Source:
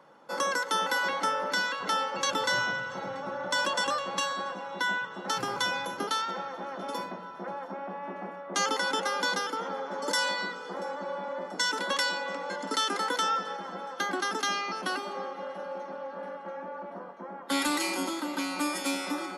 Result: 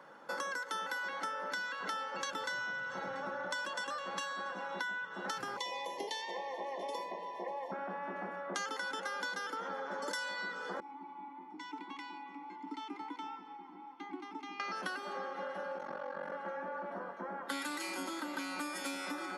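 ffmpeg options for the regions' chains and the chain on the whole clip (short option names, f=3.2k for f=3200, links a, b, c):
-filter_complex "[0:a]asettb=1/sr,asplit=3[a][b][c];[a]atrim=end=5.574[d];[b]atrim=start=5.57:end=7.72,asetpts=PTS-STARTPTS,afade=t=in:d=0.004:c=qsin,afade=t=out:st=2.146:d=0.004:c=qsin,lowshelf=f=310:t=q:w=1.5:g=-9,acrossover=split=8700[e][f];[f]acompressor=threshold=-57dB:ratio=4:attack=1:release=60[g];[e][g]amix=inputs=2:normalize=0,asuperstop=centerf=1400:order=20:qfactor=2.2[h];[c]atrim=start=7.716[i];[d][h]acrossfade=d=0.004:c1=hsin:c2=qsin[j];[j][i]acrossfade=d=0.004:c1=qsin:c2=hsin,asettb=1/sr,asplit=3[k][l][m];[k]atrim=end=10.804[n];[l]atrim=start=10.8:end=14.6,asetpts=PTS-STARTPTS,afade=t=in:d=0.004:c=qsin,afade=t=out:st=3.796:d=0.004:c=qsin,asplit=3[o][p][q];[o]bandpass=f=300:t=q:w=8,volume=0dB[r];[p]bandpass=f=870:t=q:w=8,volume=-6dB[s];[q]bandpass=f=2.24k:t=q:w=8,volume=-9dB[t];[r][s][t]amix=inputs=3:normalize=0,equalizer=f=580:w=4:g=-13[u];[m]atrim=start=14.596[v];[n][u]acrossfade=d=0.004:c1=hsin:c2=qsin[w];[w][v]acrossfade=d=0.004:c1=qsin:c2=hsin,asettb=1/sr,asplit=3[x][y][z];[x]atrim=end=15.774[aa];[y]atrim=start=15.77:end=16.32,asetpts=PTS-STARTPTS,afade=t=in:d=0.004:c=qsin,afade=t=out:st=0.546:d=0.004:c=qsin,asplit=2[ab][ac];[ac]adelay=47,volume=-6dB[ad];[ab][ad]amix=inputs=2:normalize=0,atrim=end_sample=24255,aeval=exprs='val(0)*sin(2*PI*23*n/s)':c=same[ae];[z]atrim=start=16.316[af];[aa][ae]acrossfade=d=0.004:c1=hsin:c2=qsin[ag];[ag][af]acrossfade=d=0.004:c1=qsin:c2=hsin,highpass=140,equalizer=f=1.6k:w=2.5:g=6.5,acompressor=threshold=-37dB:ratio=6"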